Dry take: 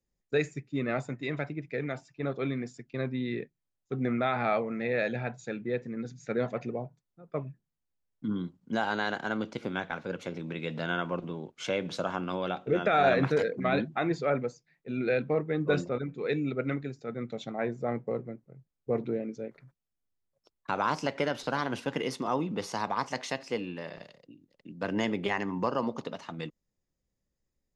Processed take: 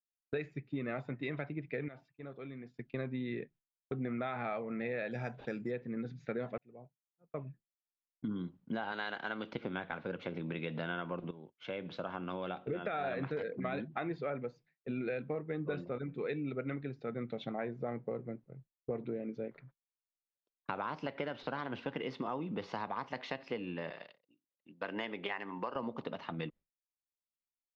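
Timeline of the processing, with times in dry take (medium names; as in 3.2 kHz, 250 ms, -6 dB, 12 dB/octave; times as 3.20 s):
1.88–2.74 s: compression 2:1, threshold -57 dBFS
5.11–5.71 s: careless resampling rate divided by 6×, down none, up hold
6.58–8.26 s: fade in
8.92–9.53 s: tilt EQ +2.5 dB/octave
11.31–13.33 s: fade in, from -14.5 dB
23.91–25.76 s: high-pass 730 Hz 6 dB/octave
whole clip: low-pass 3.7 kHz 24 dB/octave; expander -50 dBFS; compression 5:1, threshold -36 dBFS; trim +1 dB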